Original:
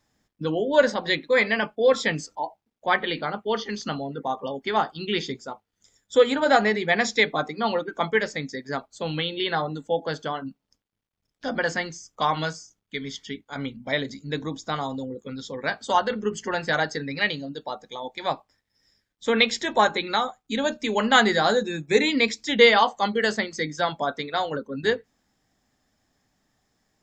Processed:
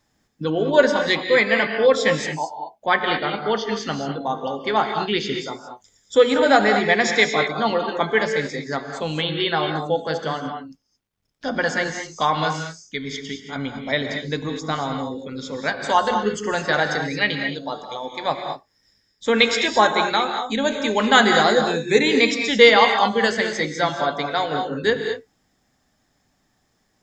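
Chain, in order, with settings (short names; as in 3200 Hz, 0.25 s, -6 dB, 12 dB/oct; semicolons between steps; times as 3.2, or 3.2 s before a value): non-linear reverb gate 0.25 s rising, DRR 4.5 dB; gain +3 dB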